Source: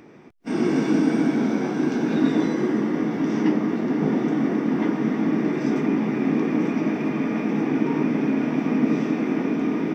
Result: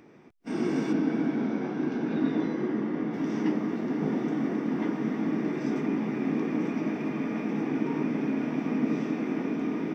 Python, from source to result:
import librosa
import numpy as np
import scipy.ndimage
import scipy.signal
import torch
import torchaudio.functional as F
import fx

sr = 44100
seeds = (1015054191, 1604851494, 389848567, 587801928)

y = fx.air_absorb(x, sr, metres=150.0, at=(0.92, 3.12), fade=0.02)
y = F.gain(torch.from_numpy(y), -6.5).numpy()